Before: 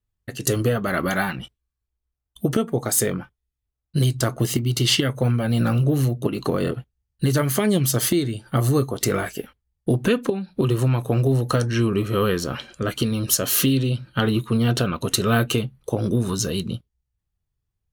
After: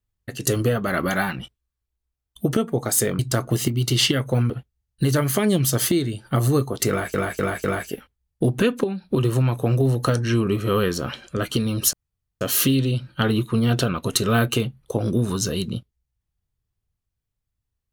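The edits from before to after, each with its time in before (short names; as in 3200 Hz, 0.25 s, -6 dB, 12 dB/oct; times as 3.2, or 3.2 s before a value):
3.19–4.08 cut
5.39–6.71 cut
9.1–9.35 loop, 4 plays
13.39 insert room tone 0.48 s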